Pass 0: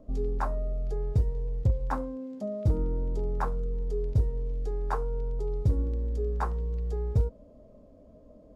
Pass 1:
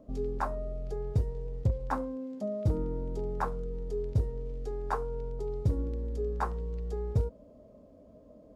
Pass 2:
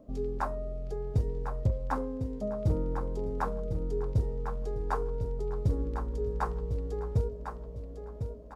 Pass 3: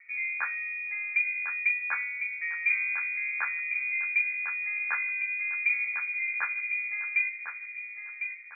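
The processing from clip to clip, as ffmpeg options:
-af "highpass=f=85:p=1"
-af "aecho=1:1:1052|2104|3156|4208:0.398|0.143|0.0516|0.0186"
-af "lowpass=f=2100:t=q:w=0.5098,lowpass=f=2100:t=q:w=0.6013,lowpass=f=2100:t=q:w=0.9,lowpass=f=2100:t=q:w=2.563,afreqshift=-2500"

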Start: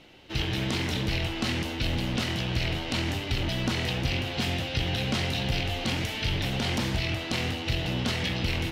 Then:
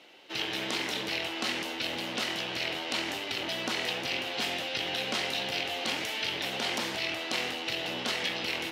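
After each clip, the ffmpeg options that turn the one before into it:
-af "highpass=400"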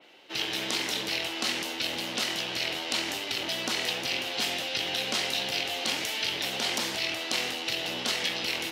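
-af "adynamicequalizer=threshold=0.00562:dfrequency=3700:dqfactor=0.7:tfrequency=3700:tqfactor=0.7:attack=5:release=100:ratio=0.375:range=3.5:mode=boostabove:tftype=highshelf"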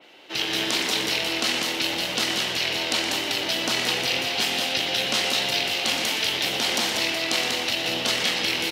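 -af "aecho=1:1:119.5|192.4:0.316|0.562,volume=1.68"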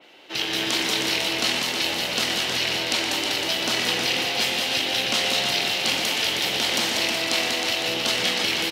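-af "aecho=1:1:315:0.501"

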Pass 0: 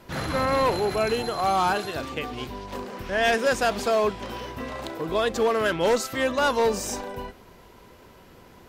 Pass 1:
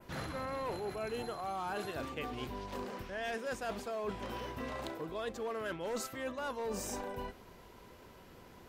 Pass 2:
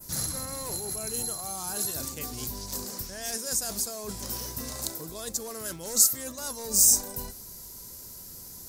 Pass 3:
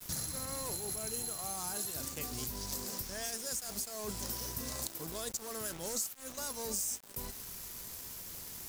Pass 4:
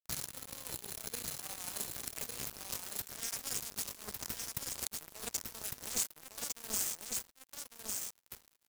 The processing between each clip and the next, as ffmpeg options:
-af "adynamicequalizer=threshold=0.00501:dfrequency=4700:dqfactor=0.9:tfrequency=4700:tqfactor=0.9:attack=5:release=100:ratio=0.375:range=2.5:mode=cutabove:tftype=bell,areverse,acompressor=threshold=0.0316:ratio=10,areverse,volume=0.531"
-af "aexciter=amount=6.8:drive=7.2:freq=4400,bass=f=250:g=9,treble=f=4000:g=9,volume=0.75"
-af "acompressor=threshold=0.0178:ratio=6,aeval=exprs='val(0)*gte(abs(val(0)),0.0075)':c=same"
-af "acrusher=bits=4:mix=0:aa=0.5,aecho=1:1:1154:0.631,volume=1.26"

